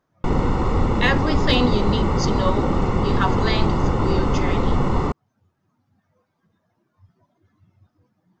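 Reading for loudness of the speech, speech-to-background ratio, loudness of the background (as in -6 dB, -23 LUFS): -25.5 LUFS, -3.5 dB, -22.0 LUFS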